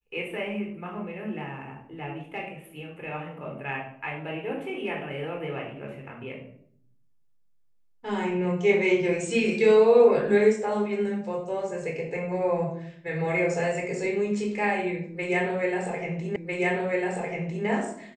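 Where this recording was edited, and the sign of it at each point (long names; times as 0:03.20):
0:16.36: the same again, the last 1.3 s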